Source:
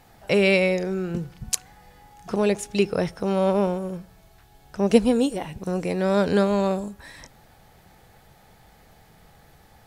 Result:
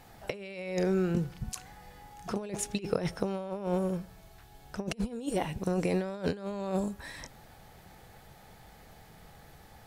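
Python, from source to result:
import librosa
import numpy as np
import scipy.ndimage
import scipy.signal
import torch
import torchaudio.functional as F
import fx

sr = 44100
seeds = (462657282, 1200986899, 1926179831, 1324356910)

y = fx.over_compress(x, sr, threshold_db=-26.0, ratio=-0.5)
y = y * 10.0 ** (-5.0 / 20.0)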